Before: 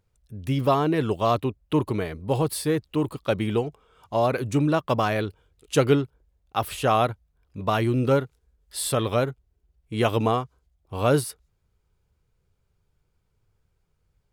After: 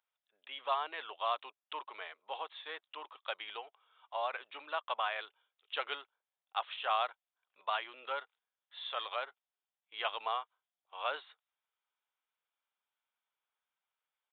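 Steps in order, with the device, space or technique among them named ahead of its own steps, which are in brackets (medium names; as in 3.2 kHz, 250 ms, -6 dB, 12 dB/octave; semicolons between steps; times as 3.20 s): musical greeting card (resampled via 8 kHz; high-pass 770 Hz 24 dB/octave; peaking EQ 3.4 kHz +5 dB 0.4 oct); trim -8 dB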